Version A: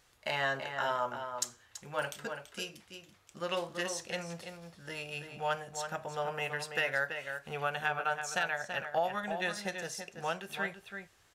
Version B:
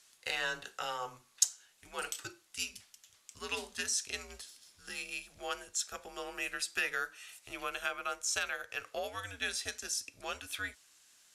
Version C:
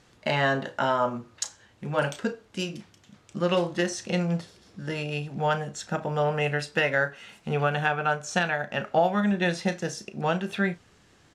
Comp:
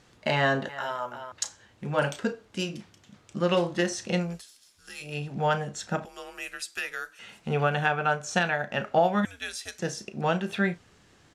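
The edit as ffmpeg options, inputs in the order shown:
-filter_complex "[1:a]asplit=3[s0][s1][s2];[2:a]asplit=5[s3][s4][s5][s6][s7];[s3]atrim=end=0.692[s8];[0:a]atrim=start=0.688:end=1.322[s9];[s4]atrim=start=1.318:end=4.4[s10];[s0]atrim=start=4.16:end=5.23[s11];[s5]atrim=start=4.99:end=6.052[s12];[s1]atrim=start=6.048:end=7.192[s13];[s6]atrim=start=7.188:end=9.252[s14];[s2]atrim=start=9.248:end=9.792[s15];[s7]atrim=start=9.788[s16];[s8][s9]acrossfade=d=0.004:c1=hsin:c2=hsin[s17];[s17][s10]acrossfade=d=0.004:c1=hsin:c2=hsin[s18];[s18][s11]acrossfade=d=0.24:c1=tri:c2=tri[s19];[s19][s12]acrossfade=d=0.24:c1=tri:c2=tri[s20];[s20][s13]acrossfade=d=0.004:c1=hsin:c2=hsin[s21];[s21][s14]acrossfade=d=0.004:c1=hsin:c2=hsin[s22];[s22][s15]acrossfade=d=0.004:c1=hsin:c2=hsin[s23];[s23][s16]acrossfade=d=0.004:c1=hsin:c2=hsin"

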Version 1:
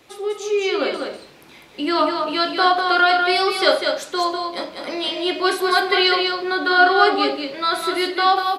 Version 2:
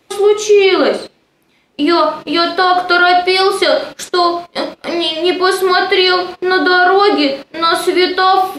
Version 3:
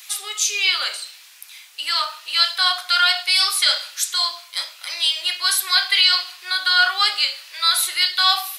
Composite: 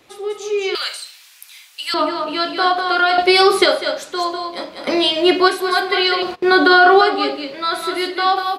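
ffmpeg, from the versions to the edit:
-filter_complex "[1:a]asplit=3[s0][s1][s2];[0:a]asplit=5[s3][s4][s5][s6][s7];[s3]atrim=end=0.752[s8];[2:a]atrim=start=0.748:end=1.942[s9];[s4]atrim=start=1.938:end=3.182[s10];[s0]atrim=start=3.178:end=3.662[s11];[s5]atrim=start=3.658:end=4.872[s12];[s1]atrim=start=4.868:end=5.482[s13];[s6]atrim=start=5.478:end=6.222[s14];[s2]atrim=start=6.218:end=7.012[s15];[s7]atrim=start=7.008[s16];[s8][s9]acrossfade=d=0.004:c1=hsin:c2=hsin[s17];[s17][s10]acrossfade=d=0.004:c1=hsin:c2=hsin[s18];[s18][s11]acrossfade=d=0.004:c1=hsin:c2=hsin[s19];[s19][s12]acrossfade=d=0.004:c1=hsin:c2=hsin[s20];[s20][s13]acrossfade=d=0.004:c1=hsin:c2=hsin[s21];[s21][s14]acrossfade=d=0.004:c1=hsin:c2=hsin[s22];[s22][s15]acrossfade=d=0.004:c1=hsin:c2=hsin[s23];[s23][s16]acrossfade=d=0.004:c1=hsin:c2=hsin"

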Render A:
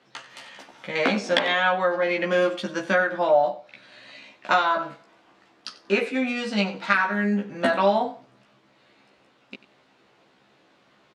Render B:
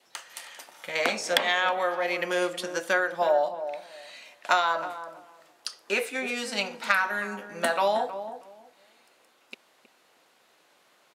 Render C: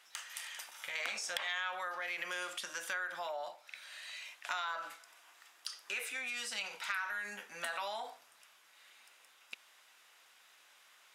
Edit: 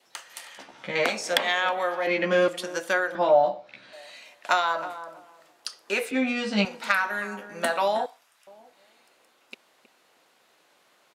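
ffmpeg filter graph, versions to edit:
-filter_complex "[0:a]asplit=4[s0][s1][s2][s3];[1:a]asplit=6[s4][s5][s6][s7][s8][s9];[s4]atrim=end=0.582[s10];[s0]atrim=start=0.578:end=1.052[s11];[s5]atrim=start=1.048:end=2.072[s12];[s1]atrim=start=2.068:end=2.482[s13];[s6]atrim=start=2.478:end=3.152[s14];[s2]atrim=start=3.148:end=3.932[s15];[s7]atrim=start=3.928:end=6.112[s16];[s3]atrim=start=6.108:end=6.652[s17];[s8]atrim=start=6.648:end=8.062[s18];[2:a]atrim=start=8.058:end=8.472[s19];[s9]atrim=start=8.468[s20];[s10][s11]acrossfade=d=0.004:c1=hsin:c2=hsin[s21];[s21][s12]acrossfade=d=0.004:c1=hsin:c2=hsin[s22];[s22][s13]acrossfade=d=0.004:c1=hsin:c2=hsin[s23];[s23][s14]acrossfade=d=0.004:c1=hsin:c2=hsin[s24];[s24][s15]acrossfade=d=0.004:c1=hsin:c2=hsin[s25];[s25][s16]acrossfade=d=0.004:c1=hsin:c2=hsin[s26];[s26][s17]acrossfade=d=0.004:c1=hsin:c2=hsin[s27];[s27][s18]acrossfade=d=0.004:c1=hsin:c2=hsin[s28];[s28][s19]acrossfade=d=0.004:c1=hsin:c2=hsin[s29];[s29][s20]acrossfade=d=0.004:c1=hsin:c2=hsin"

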